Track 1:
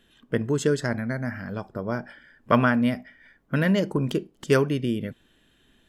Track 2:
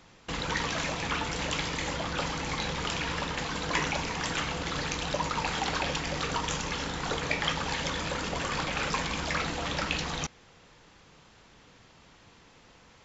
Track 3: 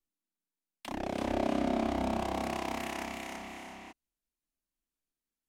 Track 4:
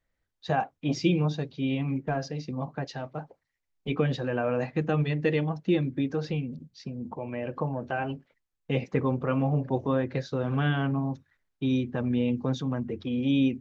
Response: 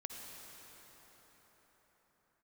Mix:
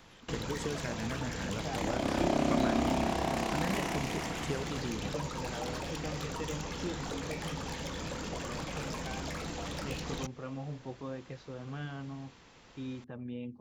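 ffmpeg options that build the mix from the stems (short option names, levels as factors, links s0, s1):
-filter_complex "[0:a]acompressor=threshold=0.0251:ratio=6,volume=0.708[s0];[1:a]volume=20,asoftclip=hard,volume=0.0501,acrossover=split=670|5500[s1][s2][s3];[s1]acompressor=threshold=0.0158:ratio=4[s4];[s2]acompressor=threshold=0.00631:ratio=4[s5];[s3]acompressor=threshold=0.00447:ratio=4[s6];[s4][s5][s6]amix=inputs=3:normalize=0,volume=0.891[s7];[2:a]adelay=900,volume=1.12[s8];[3:a]adelay=1150,volume=0.188[s9];[s0][s7][s8][s9]amix=inputs=4:normalize=0"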